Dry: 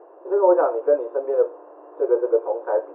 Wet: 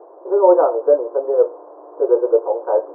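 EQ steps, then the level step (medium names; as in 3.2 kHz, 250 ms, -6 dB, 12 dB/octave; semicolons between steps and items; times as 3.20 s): high-pass 290 Hz; low-pass 1.2 kHz 24 dB/octave; +5.0 dB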